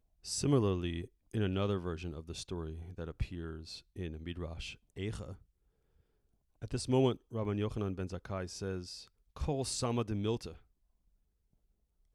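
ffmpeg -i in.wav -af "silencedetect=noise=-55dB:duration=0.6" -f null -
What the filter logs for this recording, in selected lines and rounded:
silence_start: 5.42
silence_end: 6.62 | silence_duration: 1.20
silence_start: 10.62
silence_end: 12.14 | silence_duration: 1.52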